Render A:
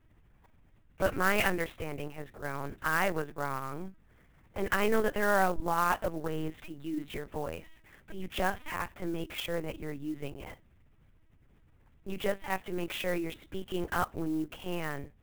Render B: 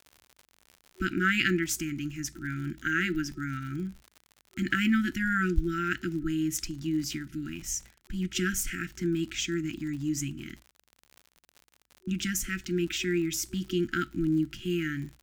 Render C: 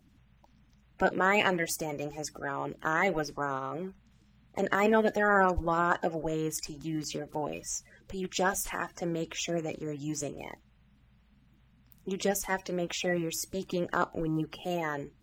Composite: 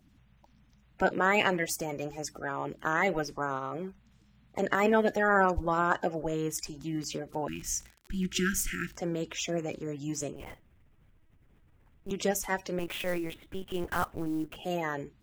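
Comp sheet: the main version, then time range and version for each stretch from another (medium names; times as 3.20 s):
C
7.48–8.97 s: from B
10.36–12.11 s: from A
12.79–14.56 s: from A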